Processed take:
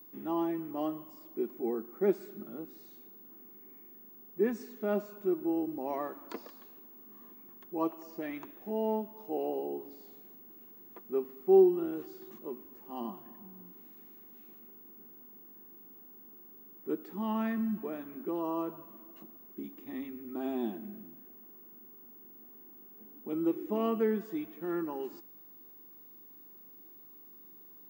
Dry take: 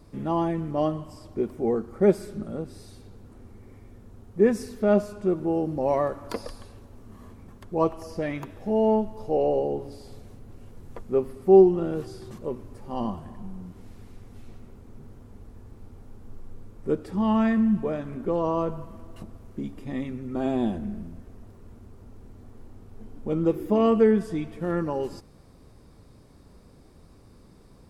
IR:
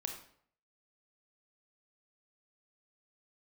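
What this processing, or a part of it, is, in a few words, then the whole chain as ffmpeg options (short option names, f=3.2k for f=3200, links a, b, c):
old television with a line whistle: -filter_complex "[0:a]asettb=1/sr,asplit=3[a][b][c];[a]atrim=end=13.264[d];[b]atrim=start=13.26:end=13.66,asetpts=PTS-STARTPTS,afade=t=in:d=0.004:c=qsin,afade=t=out:st=0.396:d=0.004:c=qsin,lowpass=6.2k[e];[c]atrim=start=13.656[f];[d][e]acrossfade=d=0.004:c1=hsin:c2=qsin[g];[g][f]acrossfade=d=0.004:c1=qsin:c2=hsin,highpass=f=220:w=0.5412,highpass=f=220:w=1.3066,equalizer=f=340:t=q:w=4:g=5,equalizer=f=530:t=q:w=4:g=-10,equalizer=f=5k:t=q:w=4:g=-7,lowpass=f=7.2k:w=0.5412,lowpass=f=7.2k:w=1.3066,aeval=exprs='val(0)+0.00708*sin(2*PI*15625*n/s)':c=same,volume=-8dB"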